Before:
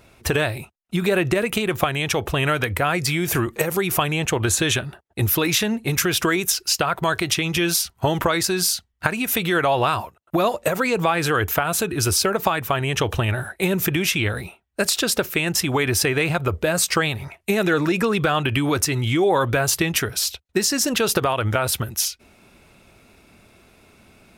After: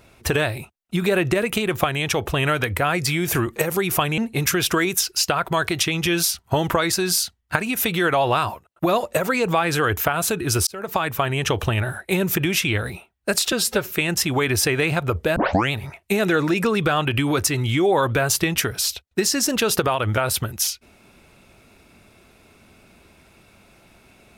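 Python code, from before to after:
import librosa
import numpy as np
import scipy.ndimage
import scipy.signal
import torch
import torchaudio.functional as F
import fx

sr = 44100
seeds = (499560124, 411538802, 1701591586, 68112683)

y = fx.edit(x, sr, fx.cut(start_s=4.18, length_s=1.51),
    fx.fade_in_span(start_s=12.18, length_s=0.39),
    fx.stretch_span(start_s=15.03, length_s=0.26, factor=1.5),
    fx.tape_start(start_s=16.74, length_s=0.36), tone=tone)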